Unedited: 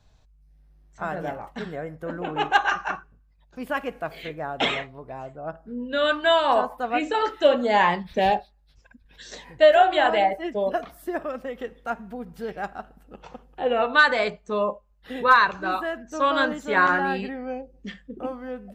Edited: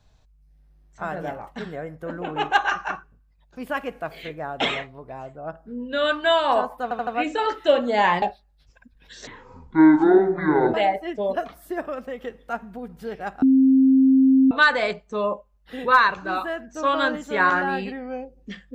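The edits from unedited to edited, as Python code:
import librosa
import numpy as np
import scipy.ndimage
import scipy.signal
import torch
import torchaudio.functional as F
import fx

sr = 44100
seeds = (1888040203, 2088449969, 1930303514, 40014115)

y = fx.edit(x, sr, fx.stutter(start_s=6.83, slice_s=0.08, count=4),
    fx.cut(start_s=7.98, length_s=0.33),
    fx.speed_span(start_s=9.36, length_s=0.75, speed=0.51),
    fx.bleep(start_s=12.79, length_s=1.09, hz=265.0, db=-12.0), tone=tone)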